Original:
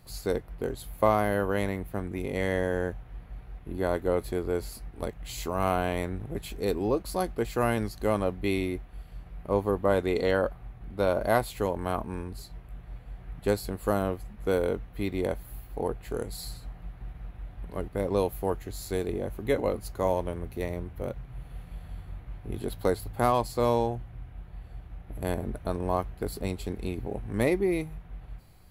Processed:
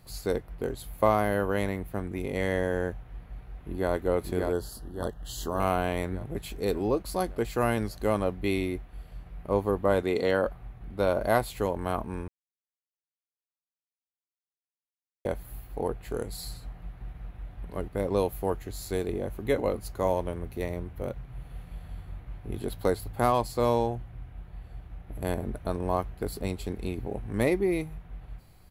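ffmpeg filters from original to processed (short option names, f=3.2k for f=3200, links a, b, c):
-filter_complex "[0:a]asplit=2[a][b];[b]afade=t=in:st=3:d=0.01,afade=t=out:st=3.91:d=0.01,aecho=0:1:580|1160|1740|2320|2900|3480|4060|4640|5220:0.668344|0.401006|0.240604|0.144362|0.0866174|0.0519704|0.0311823|0.0187094|0.0112256[c];[a][c]amix=inputs=2:normalize=0,asettb=1/sr,asplit=3[d][e][f];[d]atrim=end=4.524[g];[e]atrim=start=4.52:end=5.6,asetpts=PTS-STARTPTS,afade=t=in:d=0.004:c=qsin,afade=t=out:st=1.076:d=0.004:c=qsin,asuperstop=centerf=2300:order=8:qfactor=2.3[h];[f]atrim=start=5.596[i];[g][h]acrossfade=d=0.004:c1=hsin:c2=qsin[j];[j][i]acrossfade=d=0.004:c1=qsin:c2=hsin,asettb=1/sr,asplit=3[k][l][m];[k]atrim=end=10.034[n];[l]atrim=start=10.03:end=10.46,asetpts=PTS-STARTPTS,afade=t=in:d=0.004:c=qsin,afade=t=out:st=0.426:d=0.004:c=qsin,highpass=100[o];[m]atrim=start=10.456[p];[n][o]acrossfade=d=0.004:c1=hsin:c2=qsin[q];[q][p]acrossfade=d=0.004:c1=qsin:c2=hsin,asplit=3[r][s][t];[r]atrim=end=12.28,asetpts=PTS-STARTPTS,afade=t=out:st=12.276:d=0.004:c=hsin[u];[s]atrim=start=12.28:end=15.25,asetpts=PTS-STARTPTS,volume=0[v];[t]atrim=start=15.25,asetpts=PTS-STARTPTS,afade=t=in:d=0.004:c=hsin[w];[u][v][w]concat=n=3:v=0:a=1"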